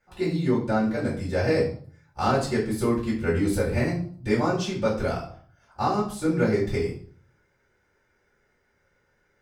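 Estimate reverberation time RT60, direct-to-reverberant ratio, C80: 0.50 s, -8.0 dB, 11.5 dB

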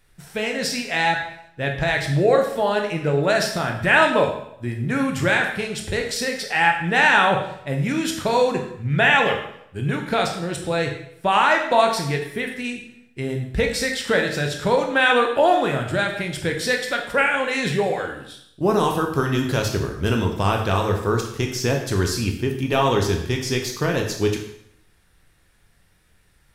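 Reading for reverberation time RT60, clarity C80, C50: 0.75 s, 9.0 dB, 6.5 dB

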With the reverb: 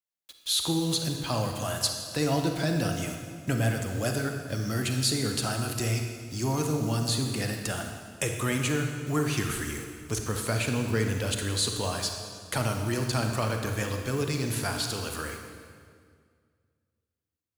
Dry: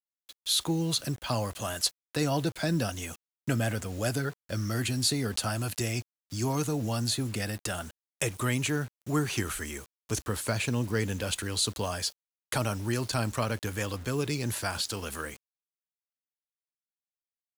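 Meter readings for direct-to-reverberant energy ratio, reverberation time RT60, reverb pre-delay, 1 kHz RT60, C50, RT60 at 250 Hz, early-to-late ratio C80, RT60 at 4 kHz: 3.5 dB, 2.0 s, 34 ms, 1.9 s, 4.5 dB, 2.3 s, 6.0 dB, 1.7 s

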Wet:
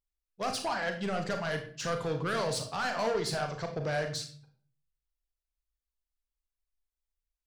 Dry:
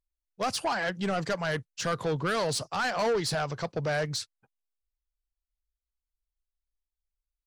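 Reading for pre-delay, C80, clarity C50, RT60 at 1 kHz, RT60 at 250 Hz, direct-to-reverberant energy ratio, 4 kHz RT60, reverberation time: 35 ms, 13.0 dB, 9.0 dB, 0.45 s, 0.65 s, 4.5 dB, 0.40 s, 0.50 s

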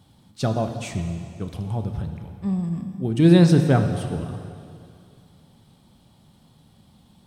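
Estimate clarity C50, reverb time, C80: 7.5 dB, 2.4 s, 8.0 dB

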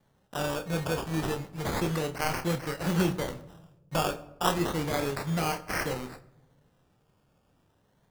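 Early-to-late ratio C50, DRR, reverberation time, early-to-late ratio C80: 16.5 dB, 7.5 dB, no single decay rate, 18.5 dB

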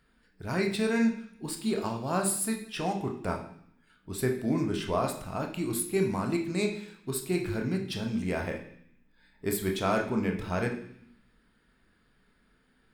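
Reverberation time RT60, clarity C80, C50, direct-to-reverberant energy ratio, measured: 0.65 s, 11.0 dB, 8.0 dB, 2.0 dB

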